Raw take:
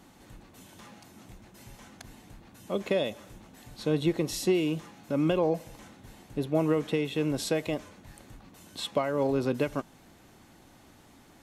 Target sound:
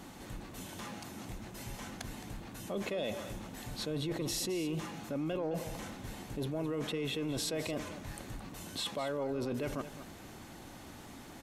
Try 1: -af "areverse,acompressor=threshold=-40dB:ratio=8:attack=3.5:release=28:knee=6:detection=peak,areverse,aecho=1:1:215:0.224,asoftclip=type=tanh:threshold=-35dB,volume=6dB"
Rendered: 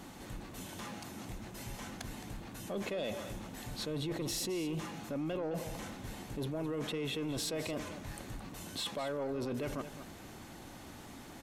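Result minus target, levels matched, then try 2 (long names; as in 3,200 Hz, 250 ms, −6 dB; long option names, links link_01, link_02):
soft clipping: distortion +12 dB
-af "areverse,acompressor=threshold=-40dB:ratio=8:attack=3.5:release=28:knee=6:detection=peak,areverse,aecho=1:1:215:0.224,asoftclip=type=tanh:threshold=-28dB,volume=6dB"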